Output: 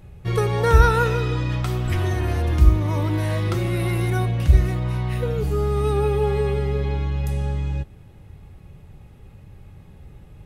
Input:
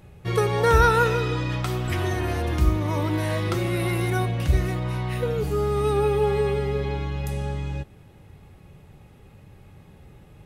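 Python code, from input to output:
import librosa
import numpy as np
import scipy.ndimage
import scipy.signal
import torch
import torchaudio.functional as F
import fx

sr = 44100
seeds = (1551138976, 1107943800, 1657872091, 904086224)

y = fx.low_shelf(x, sr, hz=100.0, db=11.0)
y = y * 10.0 ** (-1.0 / 20.0)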